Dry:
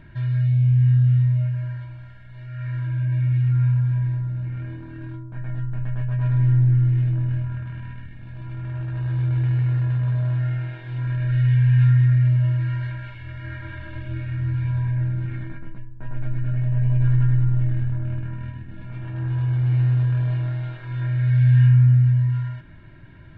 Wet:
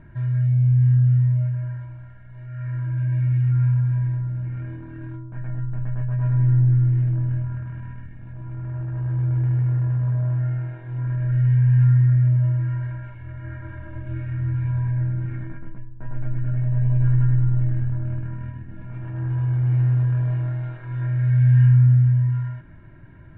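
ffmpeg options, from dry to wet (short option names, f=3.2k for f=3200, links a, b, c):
-af "asetnsamples=n=441:p=0,asendcmd='2.97 lowpass f 2100;5.47 lowpass f 1600;8.33 lowpass f 1300;14.07 lowpass f 1800',lowpass=1.6k"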